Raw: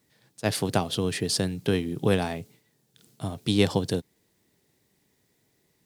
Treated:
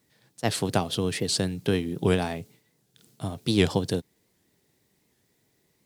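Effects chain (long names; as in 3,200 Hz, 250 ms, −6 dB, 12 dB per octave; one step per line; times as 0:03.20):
wow of a warped record 78 rpm, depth 160 cents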